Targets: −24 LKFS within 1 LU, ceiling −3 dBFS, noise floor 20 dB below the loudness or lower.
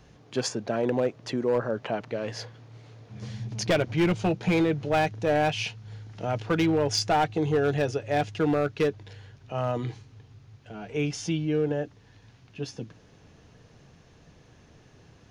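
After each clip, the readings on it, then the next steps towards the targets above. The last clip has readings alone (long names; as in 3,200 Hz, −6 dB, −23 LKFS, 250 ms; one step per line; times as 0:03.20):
share of clipped samples 1.0%; peaks flattened at −17.5 dBFS; integrated loudness −27.5 LKFS; sample peak −17.5 dBFS; target loudness −24.0 LKFS
→ clipped peaks rebuilt −17.5 dBFS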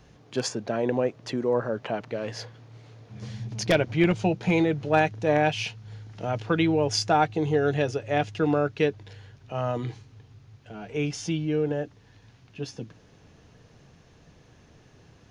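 share of clipped samples 0.0%; integrated loudness −26.5 LKFS; sample peak −8.5 dBFS; target loudness −24.0 LKFS
→ level +2.5 dB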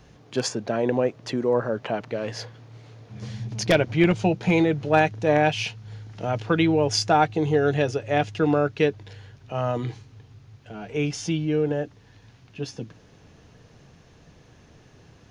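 integrated loudness −24.0 LKFS; sample peak −6.0 dBFS; background noise floor −54 dBFS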